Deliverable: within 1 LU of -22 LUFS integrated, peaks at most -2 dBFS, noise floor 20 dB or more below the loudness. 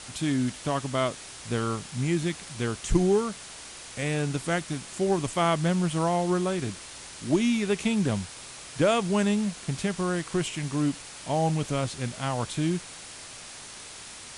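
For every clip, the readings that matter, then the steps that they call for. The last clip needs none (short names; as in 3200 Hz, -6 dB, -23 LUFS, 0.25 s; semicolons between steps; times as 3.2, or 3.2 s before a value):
noise floor -44 dBFS; noise floor target -48 dBFS; loudness -27.5 LUFS; peak -9.5 dBFS; loudness target -22.0 LUFS
-> denoiser 6 dB, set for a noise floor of -44 dBFS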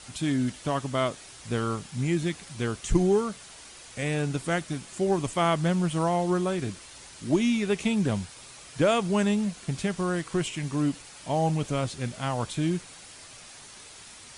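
noise floor -47 dBFS; noise floor target -48 dBFS
-> denoiser 6 dB, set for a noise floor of -47 dBFS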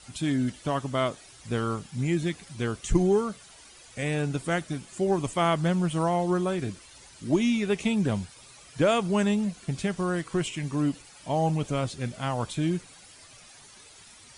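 noise floor -51 dBFS; loudness -28.0 LUFS; peak -9.5 dBFS; loudness target -22.0 LUFS
-> gain +6 dB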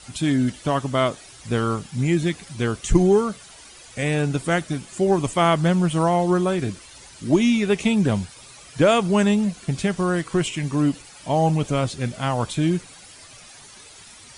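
loudness -22.0 LUFS; peak -3.5 dBFS; noise floor -45 dBFS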